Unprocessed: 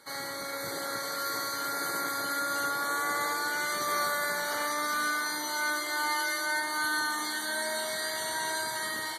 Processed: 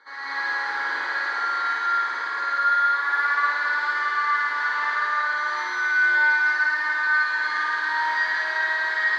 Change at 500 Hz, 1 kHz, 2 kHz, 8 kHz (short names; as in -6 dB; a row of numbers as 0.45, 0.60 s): -6.0 dB, +8.0 dB, +11.5 dB, under -15 dB